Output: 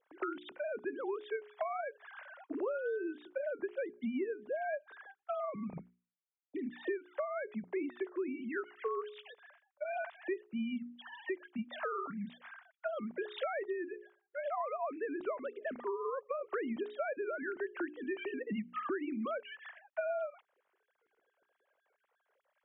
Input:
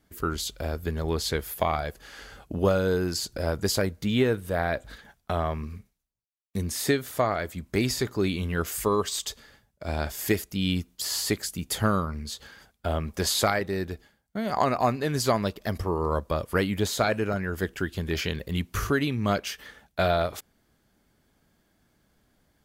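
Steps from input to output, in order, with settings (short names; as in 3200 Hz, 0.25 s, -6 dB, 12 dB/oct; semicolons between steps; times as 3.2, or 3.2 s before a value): sine-wave speech; LPF 2200 Hz 12 dB/oct; notches 60/120/180/240/300/360/420 Hz; compressor 6:1, threshold -35 dBFS, peak gain reduction 19 dB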